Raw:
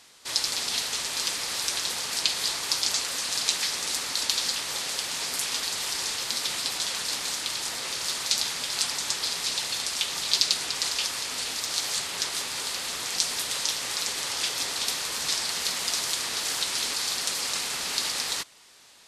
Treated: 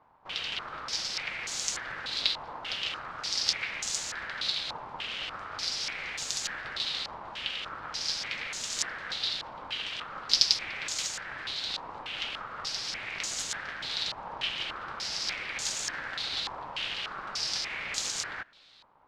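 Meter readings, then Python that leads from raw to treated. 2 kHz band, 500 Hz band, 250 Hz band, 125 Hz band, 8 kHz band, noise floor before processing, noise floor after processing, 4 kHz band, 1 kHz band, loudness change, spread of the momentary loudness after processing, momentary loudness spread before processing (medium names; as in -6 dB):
-2.0 dB, -5.0 dB, -5.5 dB, -2.0 dB, -9.0 dB, -34 dBFS, -45 dBFS, -5.0 dB, -2.0 dB, -5.5 dB, 7 LU, 4 LU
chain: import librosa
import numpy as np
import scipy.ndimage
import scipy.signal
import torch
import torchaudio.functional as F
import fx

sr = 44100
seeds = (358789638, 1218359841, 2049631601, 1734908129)

y = fx.halfwave_hold(x, sr)
y = y * np.sin(2.0 * np.pi * 380.0 * np.arange(len(y)) / sr)
y = fx.filter_held_lowpass(y, sr, hz=3.4, low_hz=970.0, high_hz=6900.0)
y = y * 10.0 ** (-9.0 / 20.0)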